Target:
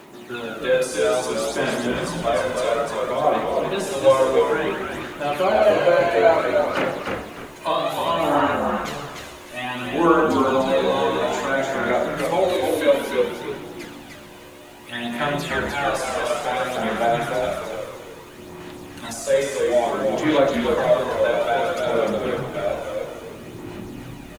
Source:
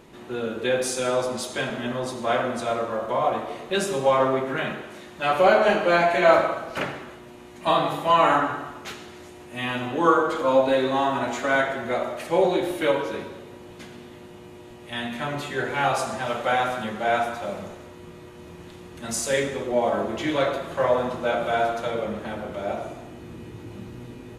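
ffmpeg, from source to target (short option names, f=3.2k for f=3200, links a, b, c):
-filter_complex "[0:a]highpass=f=350:p=1,highshelf=f=11k:g=5.5,bandreject=f=490:w=14,acrossover=split=780|1400[a][b][c];[b]acompressor=threshold=-41dB:ratio=6[d];[c]alimiter=level_in=5dB:limit=-24dB:level=0:latency=1,volume=-5dB[e];[a][d][e]amix=inputs=3:normalize=0,aphaser=in_gain=1:out_gain=1:delay=2:decay=0.52:speed=0.59:type=sinusoidal,acrusher=bits=9:mix=0:aa=0.000001,asplit=5[f][g][h][i][j];[g]adelay=301,afreqshift=-72,volume=-4dB[k];[h]adelay=602,afreqshift=-144,volume=-14.5dB[l];[i]adelay=903,afreqshift=-216,volume=-24.9dB[m];[j]adelay=1204,afreqshift=-288,volume=-35.4dB[n];[f][k][l][m][n]amix=inputs=5:normalize=0,volume=3.5dB"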